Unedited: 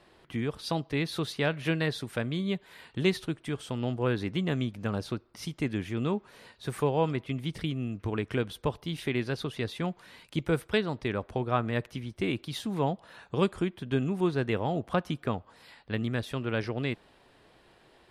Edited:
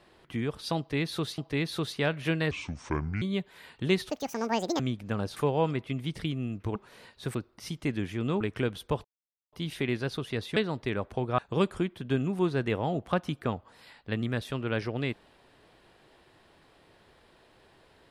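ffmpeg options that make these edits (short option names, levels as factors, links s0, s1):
-filter_complex "[0:a]asplit=13[s0][s1][s2][s3][s4][s5][s6][s7][s8][s9][s10][s11][s12];[s0]atrim=end=1.382[s13];[s1]atrim=start=0.778:end=1.914[s14];[s2]atrim=start=1.91:end=2.37,asetpts=PTS-STARTPTS,asetrate=28665,aresample=44100,atrim=end_sample=31209,asetpts=PTS-STARTPTS[s15];[s3]atrim=start=2.366:end=3.254[s16];[s4]atrim=start=3.25:end=4.54,asetpts=PTS-STARTPTS,asetrate=81585,aresample=44100[s17];[s5]atrim=start=4.536:end=5.112[s18];[s6]atrim=start=6.758:end=8.152[s19];[s7]atrim=start=6.168:end=6.762[s20];[s8]atrim=start=5.108:end=6.172[s21];[s9]atrim=start=8.148:end=8.79,asetpts=PTS-STARTPTS,afade=t=out:st=0.638:d=0.004:c=hsin,apad=pad_dur=0.48[s22];[s10]atrim=start=8.79:end=9.832,asetpts=PTS-STARTPTS,afade=t=in:d=0.004:c=hsin[s23];[s11]atrim=start=10.748:end=11.572[s24];[s12]atrim=start=13.198[s25];[s13][s14]acrossfade=d=0.004:c1=hsin:c2=hsin[s26];[s26][s15]acrossfade=d=0.004:c1=hsin:c2=hsin[s27];[s27][s16]acrossfade=d=0.004:c1=hsin:c2=hsin[s28];[s28][s17]acrossfade=d=0.004:c1=hsin:c2=hsin[s29];[s29][s18]acrossfade=d=0.004:c1=hsin:c2=hsin[s30];[s30][s19]acrossfade=d=0.004:c1=hsin:c2=hsin[s31];[s31][s20]acrossfade=d=0.004:c1=hsin:c2=hsin[s32];[s32][s21]acrossfade=d=0.004:c1=hsin:c2=hsin[s33];[s22][s23]concat=n=2:v=0:a=1[s34];[s33][s34]acrossfade=d=0.004:c1=hsin:c2=hsin[s35];[s35][s24]acrossfade=d=0.004:c1=hsin:c2=hsin[s36];[s36][s25]acrossfade=d=0.004:c1=hsin:c2=hsin"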